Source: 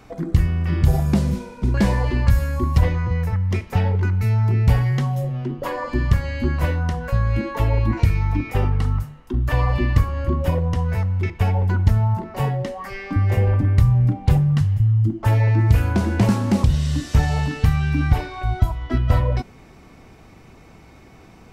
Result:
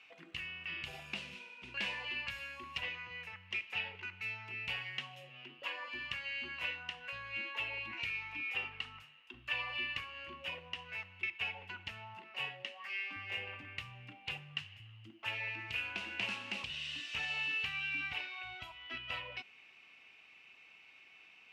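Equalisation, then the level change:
resonant band-pass 2,700 Hz, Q 7.9
+6.5 dB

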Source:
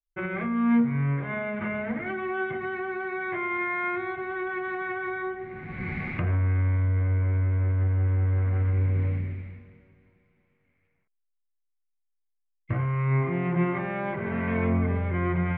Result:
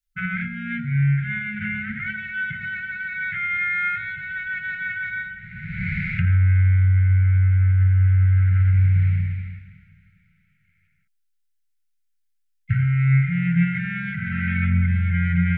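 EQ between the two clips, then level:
linear-phase brick-wall band-stop 210–1,300 Hz
+7.5 dB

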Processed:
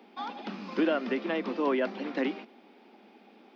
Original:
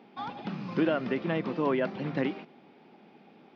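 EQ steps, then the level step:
Butterworth high-pass 200 Hz 72 dB per octave
high-shelf EQ 4,800 Hz +7.5 dB
0.0 dB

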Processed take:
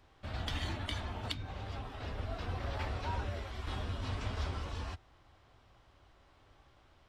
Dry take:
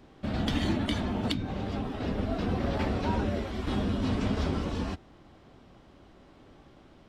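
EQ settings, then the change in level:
drawn EQ curve 100 Hz 0 dB, 200 Hz −15 dB, 1,000 Hz 0 dB
−5.0 dB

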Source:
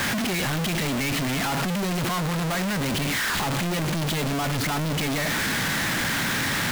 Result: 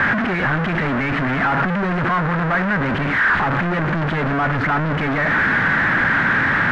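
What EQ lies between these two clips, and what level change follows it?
low-pass with resonance 1,600 Hz, resonance Q 2.5
+5.0 dB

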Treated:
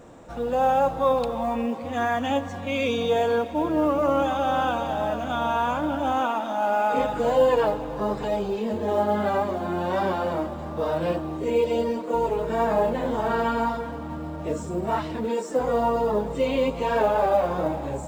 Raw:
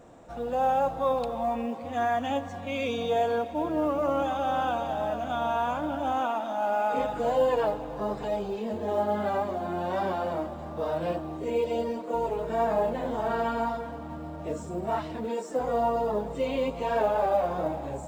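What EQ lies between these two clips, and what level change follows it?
parametric band 700 Hz −5.5 dB 0.28 octaves
+5.5 dB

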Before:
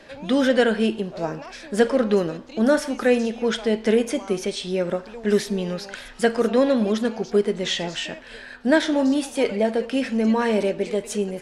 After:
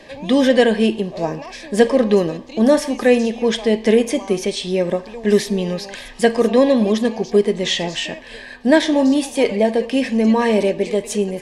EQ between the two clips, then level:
Butterworth band-reject 1,400 Hz, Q 3.8
+5.0 dB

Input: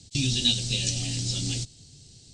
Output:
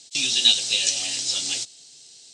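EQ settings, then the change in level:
high-pass filter 680 Hz 12 dB per octave
dynamic equaliser 990 Hz, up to +3 dB, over −43 dBFS, Q 0.77
notch filter 4,500 Hz, Q 27
+6.5 dB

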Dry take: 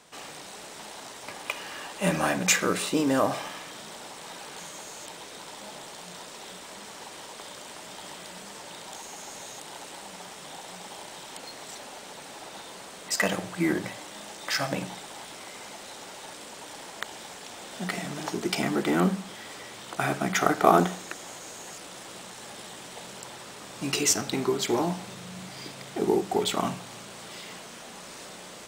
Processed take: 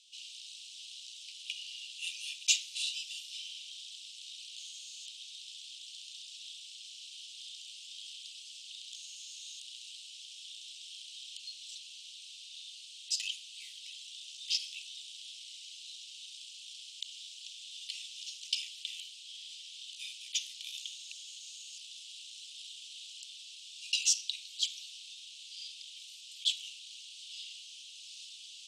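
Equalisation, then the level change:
Butterworth high-pass 2,800 Hz 72 dB per octave
high-frequency loss of the air 68 metres
high-shelf EQ 6,600 Hz −8.5 dB
+4.5 dB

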